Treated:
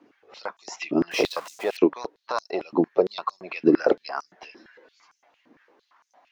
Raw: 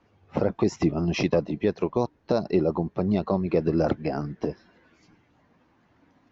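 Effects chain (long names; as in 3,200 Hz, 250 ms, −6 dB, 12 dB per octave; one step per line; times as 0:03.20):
0:01.11–0:01.77: converter with a step at zero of −36 dBFS
high-pass on a step sequencer 8.8 Hz 290–6,300 Hz
level +1.5 dB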